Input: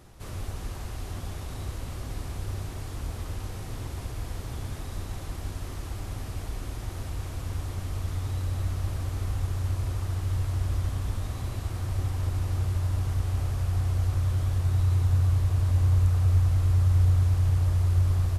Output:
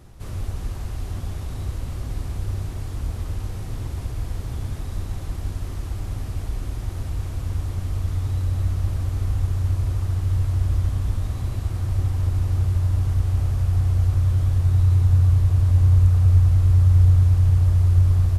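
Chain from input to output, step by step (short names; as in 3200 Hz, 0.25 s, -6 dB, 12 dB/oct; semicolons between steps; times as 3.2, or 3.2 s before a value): low shelf 240 Hz +7.5 dB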